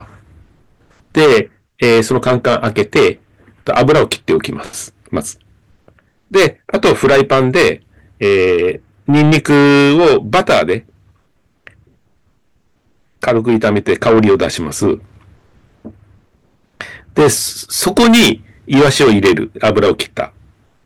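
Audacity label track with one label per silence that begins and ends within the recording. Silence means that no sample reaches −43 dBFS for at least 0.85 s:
11.890000	13.220000	silence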